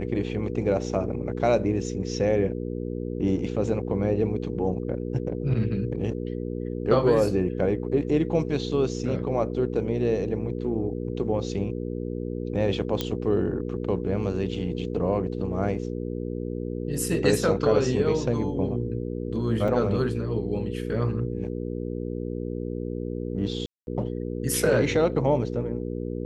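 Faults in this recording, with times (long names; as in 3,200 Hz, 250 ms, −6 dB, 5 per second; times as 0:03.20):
mains hum 60 Hz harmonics 8 −31 dBFS
0:13.01: click −12 dBFS
0:19.68: drop-out 4.3 ms
0:23.66–0:23.87: drop-out 211 ms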